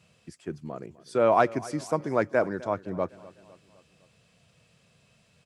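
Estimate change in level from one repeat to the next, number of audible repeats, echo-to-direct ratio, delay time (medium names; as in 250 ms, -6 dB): -5.5 dB, 3, -18.5 dB, 254 ms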